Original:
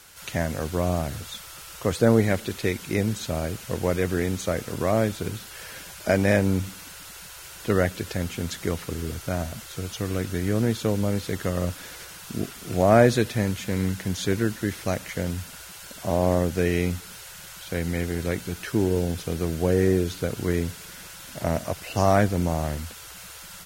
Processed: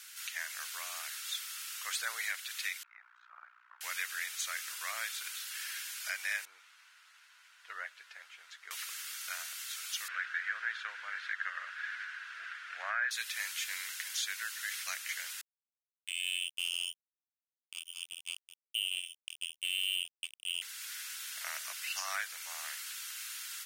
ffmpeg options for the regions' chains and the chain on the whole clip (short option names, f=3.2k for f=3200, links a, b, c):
-filter_complex "[0:a]asettb=1/sr,asplit=3[a][b][c];[a]atrim=end=2.834[d];[b]atrim=start=2.83:end=3.81,asetpts=PTS-STARTPTS,afade=t=in:d=0.004:c=qsin,afade=t=out:st=0.976:d=0.004:c=qsin,asuperpass=centerf=1100:order=4:qfactor=1.9,tremolo=f=60:d=0.919[e];[c]atrim=start=3.806[f];[d][e]acrossfade=d=0.004:c1=hsin:c2=qsin[g];[g][f]acrossfade=d=0.004:c1=qsin:c2=hsin,asettb=1/sr,asplit=3[h][i][j];[h]atrim=end=6.454[k];[i]atrim=start=6.45:end=8.71,asetpts=PTS-STARTPTS,afade=t=in:d=0.004:c=qsin,afade=t=out:st=2.256:d=0.004:c=qsin,aeval=exprs='sgn(val(0))*max(abs(val(0))-0.00224,0)':c=same,bandpass=f=380:t=q:w=0.63,asplit=2[l][m];[m]adelay=13,volume=-10.5dB[n];[l][n]amix=inputs=2:normalize=0,atrim=end_sample=99666[o];[j]atrim=start=8.706[p];[k][o]acrossfade=d=0.004:c1=hsin:c2=qsin[q];[q][p]acrossfade=d=0.004:c1=qsin:c2=hsin,asettb=1/sr,asplit=3[r][s][t];[r]atrim=end=10.084[u];[s]atrim=start=10.08:end=13.11,asetpts=PTS-STARTPTS,afade=t=in:d=0.004:c=qsin,afade=t=out:st=3.026:d=0.004:c=qsin,highpass=170,lowpass=2.2k,equalizer=f=1.6k:w=2.7:g=12[v];[t]atrim=start=13.106[w];[u][v]acrossfade=d=0.004:c1=hsin:c2=qsin[x];[x][w]acrossfade=d=0.004:c1=qsin:c2=hsin,asettb=1/sr,asplit=3[y][z][aa];[y]atrim=end=15.414[ab];[z]atrim=start=15.41:end=20.62,asetpts=PTS-STARTPTS,afade=t=in:d=0.004:c=qsin,afade=t=out:st=5.206:d=0.004:c=qsin,lowpass=f=2.7k:t=q:w=0.5098,lowpass=f=2.7k:t=q:w=0.6013,lowpass=f=2.7k:t=q:w=0.9,lowpass=f=2.7k:t=q:w=2.563,afreqshift=-3200,asuperstop=centerf=1600:order=4:qfactor=0.58,acrusher=bits=3:mix=0:aa=0.5[ac];[aa]atrim=start=20.616[ad];[ab][ac]acrossfade=d=0.004:c1=hsin:c2=qsin[ae];[ae][ad]acrossfade=d=0.004:c1=qsin:c2=hsin,highpass=f=1.5k:w=0.5412,highpass=f=1.5k:w=1.3066,alimiter=limit=-23dB:level=0:latency=1:release=401"